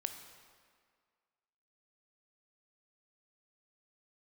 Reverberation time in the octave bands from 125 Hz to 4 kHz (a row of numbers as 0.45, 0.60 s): 1.6, 1.8, 1.9, 2.0, 1.7, 1.4 s